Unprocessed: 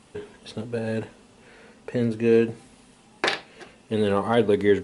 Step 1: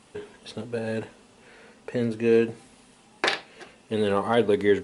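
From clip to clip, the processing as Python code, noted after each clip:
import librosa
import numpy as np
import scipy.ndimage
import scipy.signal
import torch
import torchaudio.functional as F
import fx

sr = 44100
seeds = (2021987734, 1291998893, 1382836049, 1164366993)

y = fx.low_shelf(x, sr, hz=240.0, db=-5.0)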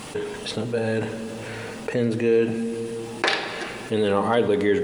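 y = fx.room_shoebox(x, sr, seeds[0], volume_m3=3900.0, walls='mixed', distance_m=0.52)
y = fx.quant_dither(y, sr, seeds[1], bits=12, dither='none')
y = fx.env_flatten(y, sr, amount_pct=50)
y = F.gain(torch.from_numpy(y), -1.5).numpy()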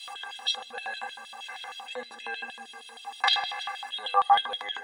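y = fx.stiff_resonator(x, sr, f0_hz=240.0, decay_s=0.21, stiffness=0.03)
y = fx.filter_lfo_highpass(y, sr, shape='square', hz=6.4, low_hz=1000.0, high_hz=3300.0, q=7.6)
y = fx.small_body(y, sr, hz=(740.0, 1700.0, 3700.0), ring_ms=50, db=15)
y = F.gain(torch.from_numpy(y), 3.0).numpy()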